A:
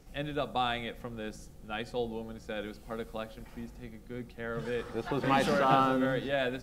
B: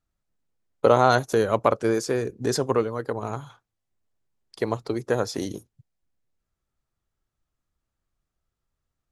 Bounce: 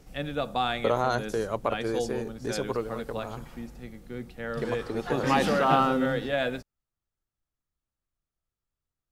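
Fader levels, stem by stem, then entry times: +3.0 dB, -8.0 dB; 0.00 s, 0.00 s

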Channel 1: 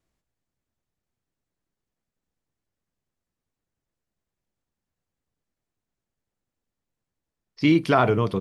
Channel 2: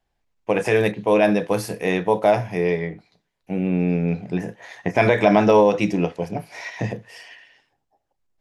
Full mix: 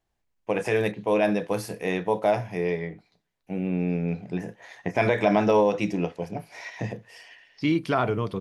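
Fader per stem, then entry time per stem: -5.0 dB, -5.5 dB; 0.00 s, 0.00 s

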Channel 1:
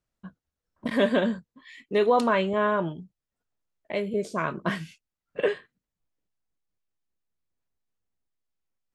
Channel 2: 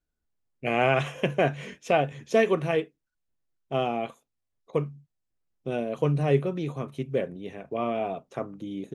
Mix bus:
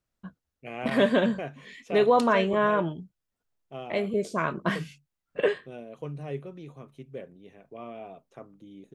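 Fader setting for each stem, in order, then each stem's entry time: +0.5 dB, -12.5 dB; 0.00 s, 0.00 s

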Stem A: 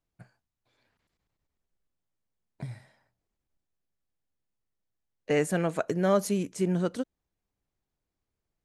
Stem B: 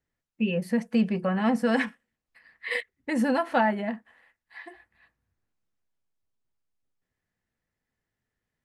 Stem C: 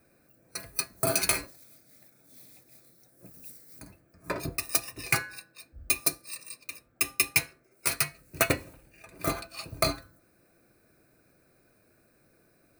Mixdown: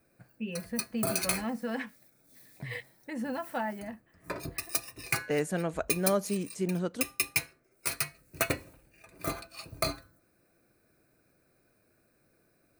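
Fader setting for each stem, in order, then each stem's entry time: -4.0 dB, -10.5 dB, -4.5 dB; 0.00 s, 0.00 s, 0.00 s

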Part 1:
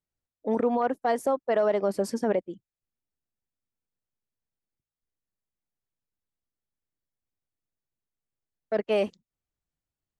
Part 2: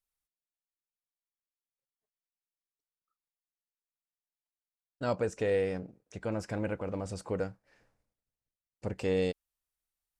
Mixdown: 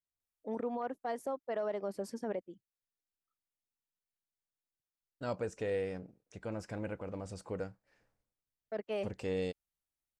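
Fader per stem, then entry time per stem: -12.0 dB, -6.0 dB; 0.00 s, 0.20 s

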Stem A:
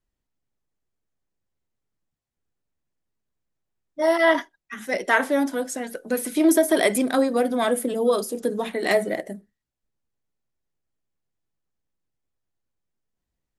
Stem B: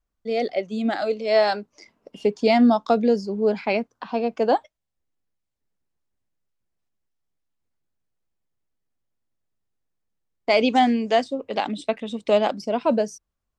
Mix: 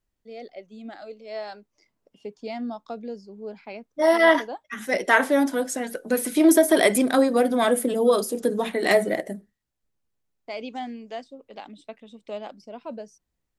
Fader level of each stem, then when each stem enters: +1.5 dB, -15.5 dB; 0.00 s, 0.00 s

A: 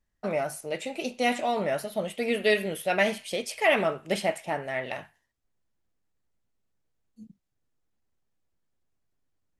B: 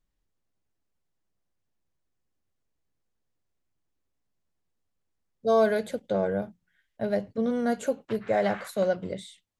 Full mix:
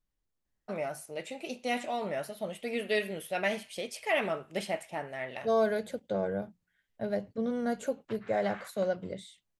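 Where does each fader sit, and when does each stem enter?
-6.5 dB, -5.0 dB; 0.45 s, 0.00 s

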